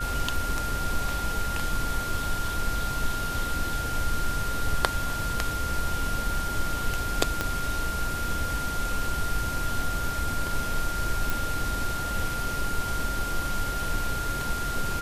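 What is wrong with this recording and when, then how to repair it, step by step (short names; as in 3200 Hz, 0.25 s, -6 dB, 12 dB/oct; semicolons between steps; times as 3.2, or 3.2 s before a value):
tone 1400 Hz -31 dBFS
7.41 pop -11 dBFS
11.3 pop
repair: de-click; notch 1400 Hz, Q 30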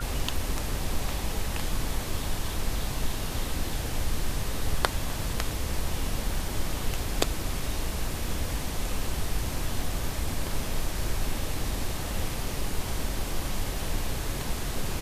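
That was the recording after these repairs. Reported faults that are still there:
7.41 pop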